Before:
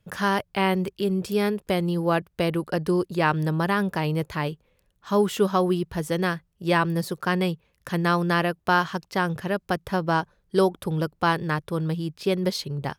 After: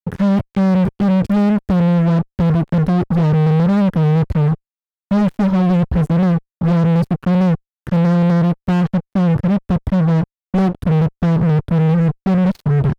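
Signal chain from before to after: FFT filter 100 Hz 0 dB, 240 Hz -8 dB, 480 Hz -24 dB; fuzz box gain 40 dB, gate -49 dBFS; treble shelf 3.3 kHz -10 dB; trim +1.5 dB

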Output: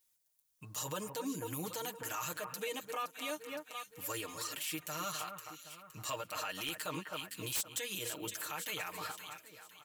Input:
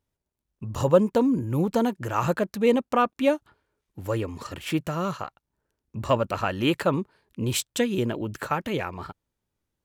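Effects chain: pre-emphasis filter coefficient 0.97; comb 6.5 ms, depth 89%; echo whose repeats swap between lows and highs 258 ms, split 2 kHz, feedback 59%, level -12 dB; in parallel at -1 dB: compression, threshold -47 dBFS, peak gain reduction 22.5 dB; on the sum: wavefolder -23 dBFS; peak limiter -33.5 dBFS, peak gain reduction 10.5 dB; trim +4.5 dB

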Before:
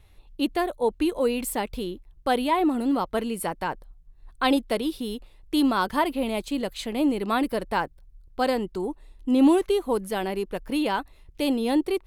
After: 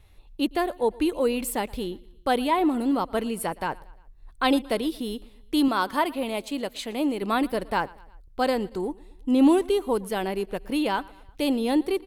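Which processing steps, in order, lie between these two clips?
5.68–7.22 s: bass shelf 170 Hz -10.5 dB; on a send: feedback delay 116 ms, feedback 52%, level -23 dB

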